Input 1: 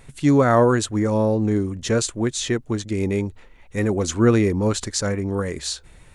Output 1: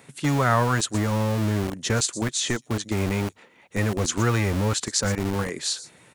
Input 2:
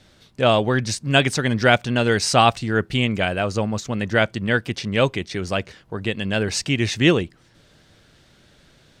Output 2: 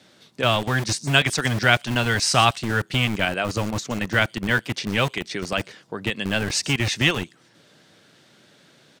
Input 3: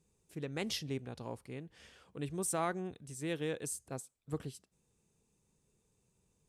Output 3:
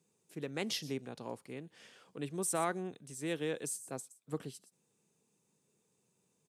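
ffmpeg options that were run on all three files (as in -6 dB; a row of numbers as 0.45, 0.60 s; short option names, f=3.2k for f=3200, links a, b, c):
-filter_complex "[0:a]acrossover=split=130|870|4800[a][b][c][d];[a]acrusher=bits=4:mix=0:aa=0.000001[e];[b]acompressor=threshold=-28dB:ratio=6[f];[d]aecho=1:1:119:0.282[g];[e][f][c][g]amix=inputs=4:normalize=0,volume=1dB"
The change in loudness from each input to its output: -3.5, -1.5, +0.5 LU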